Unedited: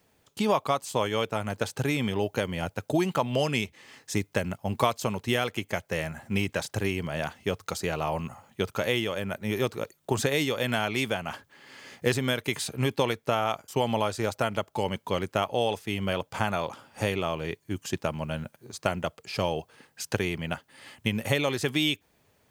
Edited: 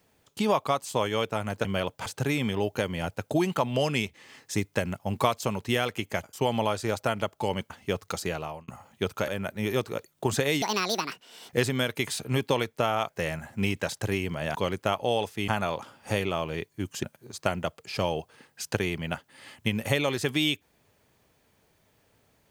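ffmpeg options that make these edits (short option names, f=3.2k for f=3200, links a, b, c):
-filter_complex "[0:a]asplit=13[a][b][c][d][e][f][g][h][i][j][k][l][m];[a]atrim=end=1.652[n];[b]atrim=start=15.978:end=16.392[o];[c]atrim=start=1.648:end=5.822[p];[d]atrim=start=13.578:end=15.052[q];[e]atrim=start=7.278:end=8.26,asetpts=PTS-STARTPTS,afade=t=out:st=0.542:d=0.44[r];[f]atrim=start=8.26:end=8.862,asetpts=PTS-STARTPTS,afade=t=in:d=0.004:c=hsin[s];[g]atrim=start=9.138:end=10.484[t];[h]atrim=start=10.48:end=11.98,asetpts=PTS-STARTPTS,asetrate=75852,aresample=44100,atrim=end_sample=38459,asetpts=PTS-STARTPTS[u];[i]atrim=start=11.976:end=13.582[v];[j]atrim=start=5.818:end=7.282[w];[k]atrim=start=15.048:end=15.982[x];[l]atrim=start=16.388:end=17.942[y];[m]atrim=start=18.428[z];[n][o]acrossfade=d=0.004:c1=hsin:c2=hsin[aa];[aa][p]acrossfade=d=0.004:c1=hsin:c2=hsin[ab];[ab][q]acrossfade=d=0.004:c1=hsin:c2=hsin[ac];[r][s]concat=n=2:v=0:a=1[ad];[ac][ad]acrossfade=d=0.004:c1=hsin:c2=hsin[ae];[ae][t]acrossfade=d=0.004:c1=hsin:c2=hsin[af];[af][u]acrossfade=d=0.004:c1=hsin:c2=hsin[ag];[ag][v]acrossfade=d=0.004:c1=hsin:c2=hsin[ah];[ah][w]acrossfade=d=0.004:c1=hsin:c2=hsin[ai];[ai][x]acrossfade=d=0.004:c1=hsin:c2=hsin[aj];[aj][y]acrossfade=d=0.004:c1=hsin:c2=hsin[ak];[ak][z]acrossfade=d=0.004:c1=hsin:c2=hsin"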